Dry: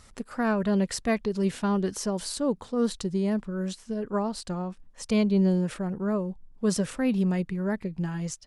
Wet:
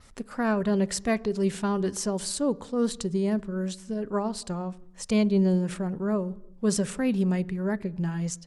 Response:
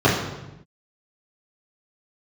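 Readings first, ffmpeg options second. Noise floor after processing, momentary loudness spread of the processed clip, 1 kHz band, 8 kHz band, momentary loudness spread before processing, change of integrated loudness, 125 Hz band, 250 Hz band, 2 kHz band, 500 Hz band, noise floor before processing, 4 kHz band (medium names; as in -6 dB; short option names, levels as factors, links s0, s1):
-49 dBFS, 8 LU, 0.0 dB, +3.0 dB, 8 LU, +0.5 dB, 0.0 dB, 0.0 dB, 0.0 dB, +1.0 dB, -54 dBFS, +0.5 dB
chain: -filter_complex "[0:a]adynamicequalizer=threshold=0.00316:dfrequency=8000:dqfactor=1.9:tfrequency=8000:tqfactor=1.9:attack=5:release=100:ratio=0.375:range=2.5:mode=boostabove:tftype=bell,asplit=2[s0][s1];[1:a]atrim=start_sample=2205,afade=t=out:st=0.41:d=0.01,atrim=end_sample=18522[s2];[s1][s2]afir=irnorm=-1:irlink=0,volume=0.00891[s3];[s0][s3]amix=inputs=2:normalize=0"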